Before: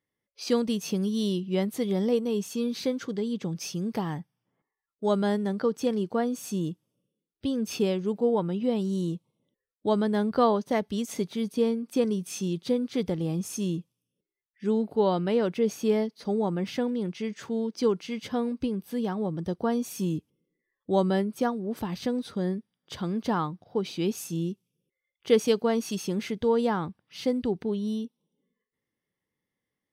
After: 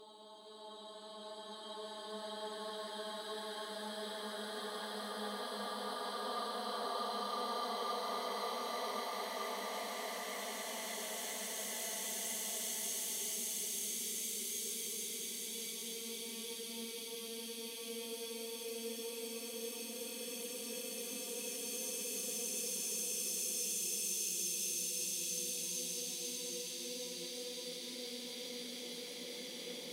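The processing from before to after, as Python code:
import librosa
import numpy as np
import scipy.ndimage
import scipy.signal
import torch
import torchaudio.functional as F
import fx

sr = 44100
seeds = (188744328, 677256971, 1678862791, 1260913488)

y = np.diff(x, prepend=0.0)
y = fx.paulstretch(y, sr, seeds[0], factor=8.7, window_s=1.0, from_s=9.57)
y = y * 10.0 ** (4.5 / 20.0)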